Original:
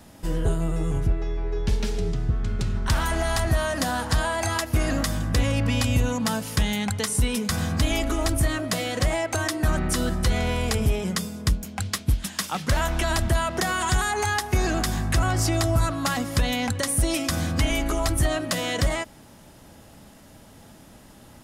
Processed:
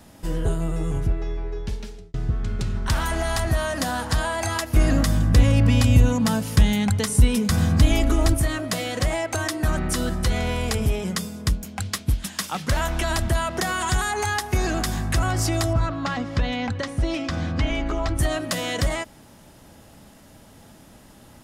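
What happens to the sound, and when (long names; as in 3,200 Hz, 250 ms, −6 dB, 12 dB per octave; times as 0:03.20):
0:01.31–0:02.14: fade out
0:04.76–0:08.34: low-shelf EQ 320 Hz +8 dB
0:15.73–0:18.19: high-frequency loss of the air 160 metres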